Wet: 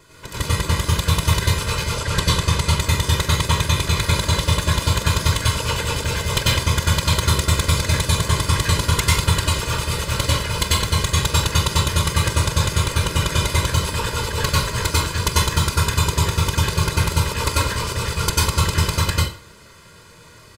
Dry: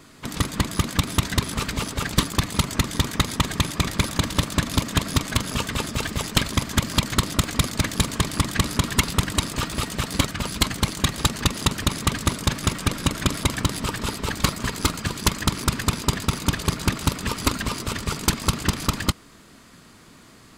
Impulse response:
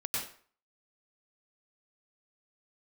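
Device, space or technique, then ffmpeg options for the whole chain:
microphone above a desk: -filter_complex "[0:a]aecho=1:1:2:0.82[link_01];[1:a]atrim=start_sample=2205[link_02];[link_01][link_02]afir=irnorm=-1:irlink=0,asettb=1/sr,asplit=3[link_03][link_04][link_05];[link_03]atrim=end=1.974[link_06];[link_04]atrim=start=1.97:end=2.8,asetpts=PTS-STARTPTS,afade=type=in:duration=0.004:curve=qsin,afade=type=out:start_time=0.826:duration=0.004:curve=qsin,lowpass=11000[link_07];[link_05]atrim=start=2.796[link_08];[link_06][link_07]acrossfade=duration=0.004:curve1=hsin:curve2=qsin[link_09];[link_09][link_08]acrossfade=duration=0.004:curve1=qsin:curve2=hsin,volume=-2dB"

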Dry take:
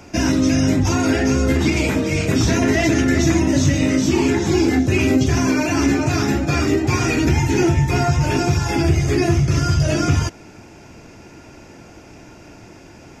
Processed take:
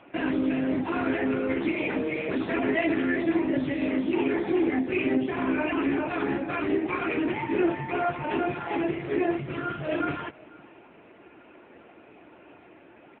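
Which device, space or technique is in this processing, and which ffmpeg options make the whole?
satellite phone: -af "highpass=320,lowpass=3200,aecho=1:1:504:0.0668,volume=-3.5dB" -ar 8000 -c:a libopencore_amrnb -b:a 6700

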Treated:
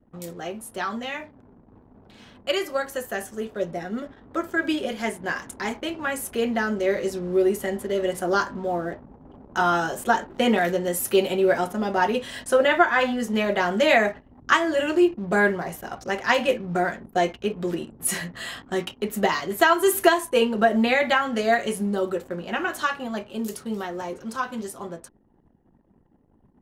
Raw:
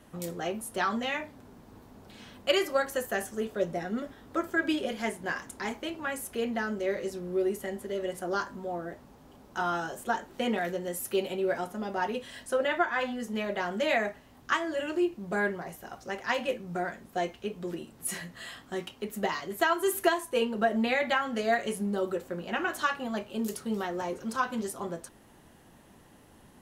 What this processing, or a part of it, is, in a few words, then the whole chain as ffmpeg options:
voice memo with heavy noise removal: -af "anlmdn=0.00158,dynaudnorm=framelen=890:gausssize=13:maxgain=11.5dB"

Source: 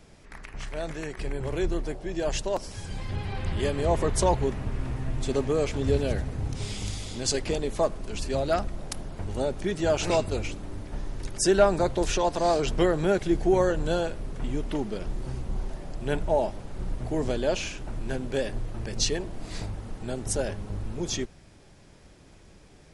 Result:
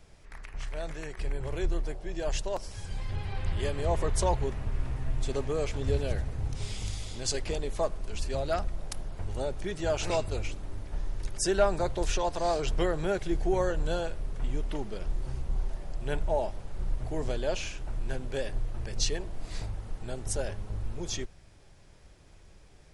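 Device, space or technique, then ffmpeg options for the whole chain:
low shelf boost with a cut just above: -af "lowshelf=frequency=63:gain=7,equalizer=frequency=240:width_type=o:width=1.2:gain=-6,volume=-4dB"

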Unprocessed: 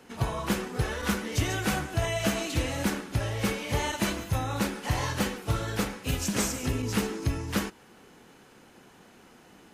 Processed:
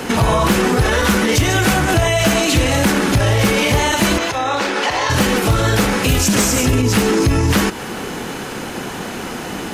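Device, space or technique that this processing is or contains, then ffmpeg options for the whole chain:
loud club master: -filter_complex "[0:a]acompressor=threshold=-35dB:ratio=1.5,asoftclip=type=hard:threshold=-23.5dB,alimiter=level_in=34dB:limit=-1dB:release=50:level=0:latency=1,asettb=1/sr,asplit=3[link_01][link_02][link_03];[link_01]atrim=end=4.184[link_04];[link_02]atrim=start=4.18:end=5.1,asetpts=PTS-STARTPTS,afade=type=in:duration=0.004:curve=qsin,afade=type=out:start_time=0.916:duration=0.004:curve=qsin,acrossover=split=320 6600:gain=0.1 1 0.126[link_05][link_06][link_07];[link_05][link_06][link_07]amix=inputs=3:normalize=0[link_08];[link_03]atrim=start=5.096[link_09];[link_04][link_08]acrossfade=duration=0.004:curve1=hsin:curve2=qsin[link_10];[link_10][link_09]acrossfade=duration=0.004:curve1=qsin:curve2=hsin,volume=-6dB"

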